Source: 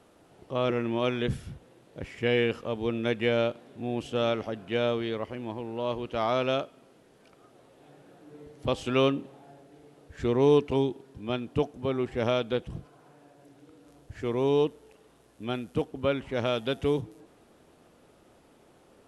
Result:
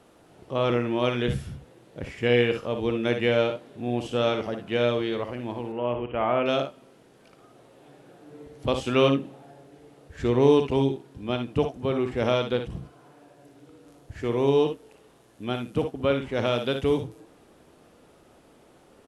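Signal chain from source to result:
0:05.72–0:06.46: Chebyshev low-pass filter 3,000 Hz, order 6
ambience of single reflections 58 ms −8 dB, 73 ms −13.5 dB
level +2.5 dB

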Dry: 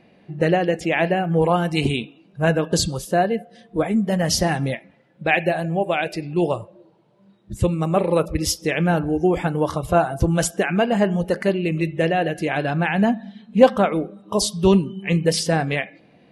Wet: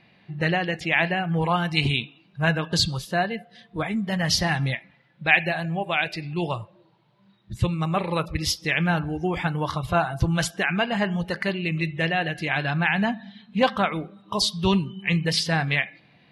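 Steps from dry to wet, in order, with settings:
graphic EQ with 10 bands 125 Hz +7 dB, 250 Hz −3 dB, 500 Hz −6 dB, 1,000 Hz +5 dB, 2,000 Hz +6 dB, 4,000 Hz +10 dB, 8,000 Hz −5 dB
level −5.5 dB

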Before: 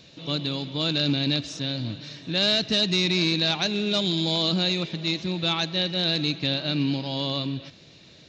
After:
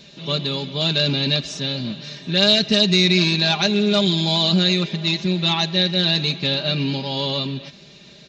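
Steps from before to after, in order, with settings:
comb filter 5 ms, depth 78%
level +3.5 dB

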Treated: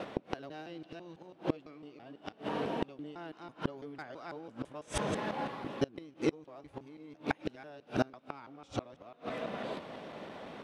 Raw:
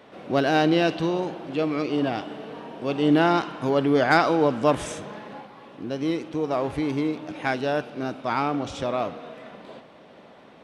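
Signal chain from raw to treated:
reversed piece by piece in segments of 166 ms
gate with flip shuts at −20 dBFS, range −29 dB
level +3.5 dB

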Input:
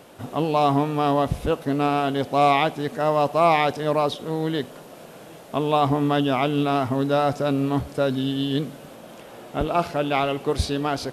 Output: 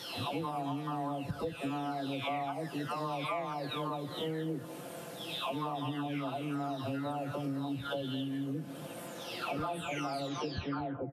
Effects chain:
every frequency bin delayed by itself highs early, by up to 841 ms
high-pass filter 84 Hz
downward compressor 12 to 1, threshold −33 dBFS, peak gain reduction 19 dB
single-tap delay 220 ms −14 dB

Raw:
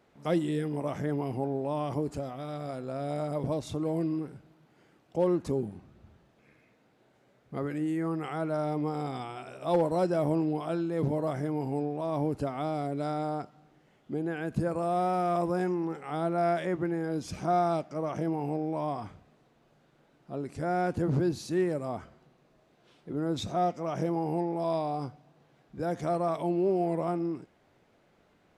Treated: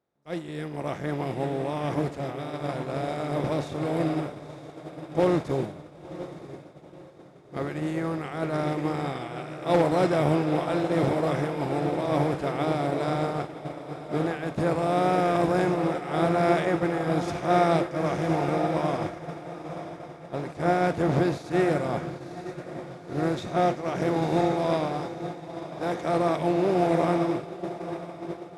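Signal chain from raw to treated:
compressor on every frequency bin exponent 0.6
dynamic equaliser 2,300 Hz, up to +7 dB, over −51 dBFS, Q 1.4
automatic gain control gain up to 5 dB
0:25.00–0:26.14: low-shelf EQ 220 Hz −7.5 dB
feedback delay with all-pass diffusion 964 ms, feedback 74%, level −6 dB
downward expander −15 dBFS
level −3 dB

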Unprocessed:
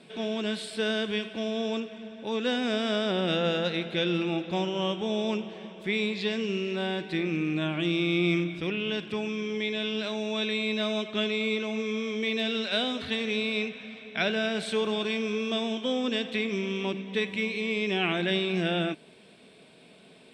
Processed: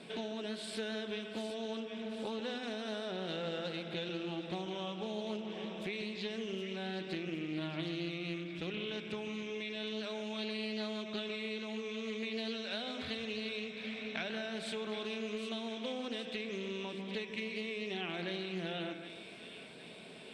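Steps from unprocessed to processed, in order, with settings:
mains-hum notches 50/100/150/200/250/300/350 Hz
downward compressor 6 to 1, threshold −40 dBFS, peak gain reduction 17.5 dB
echo with a time of its own for lows and highs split 1,800 Hz, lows 148 ms, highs 764 ms, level −9 dB
highs frequency-modulated by the lows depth 0.19 ms
level +2 dB

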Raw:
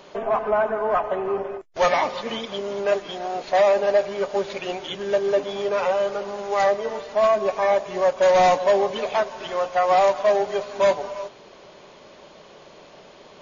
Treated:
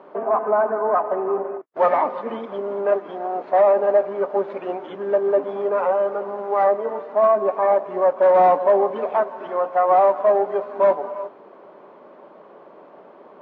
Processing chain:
Chebyshev band-pass filter 250–1,200 Hz, order 2
level +3 dB

